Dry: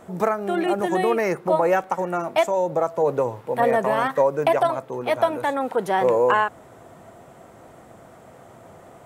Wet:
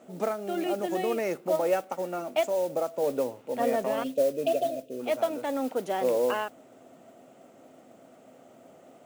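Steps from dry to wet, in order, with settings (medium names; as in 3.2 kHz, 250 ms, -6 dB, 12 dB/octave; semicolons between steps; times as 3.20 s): spectral selection erased 4.03–5.00 s, 730–2400 Hz; cabinet simulation 190–9300 Hz, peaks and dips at 260 Hz +10 dB, 590 Hz +5 dB, 1 kHz -8 dB, 1.7 kHz -5 dB, 2.8 kHz +5 dB, 6.7 kHz +3 dB; modulation noise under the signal 21 dB; trim -8.5 dB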